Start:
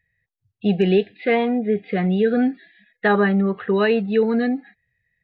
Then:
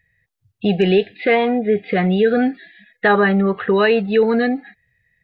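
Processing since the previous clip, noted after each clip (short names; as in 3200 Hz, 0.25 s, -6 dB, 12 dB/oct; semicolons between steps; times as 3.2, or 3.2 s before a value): dynamic EQ 230 Hz, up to -6 dB, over -30 dBFS, Q 1; in parallel at +2.5 dB: limiter -16 dBFS, peak gain reduction 7 dB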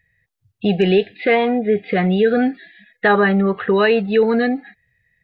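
nothing audible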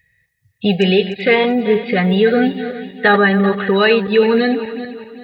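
regenerating reverse delay 0.194 s, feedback 58%, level -11 dB; high shelf 3000 Hz +10 dB; notch comb 340 Hz; gain +2 dB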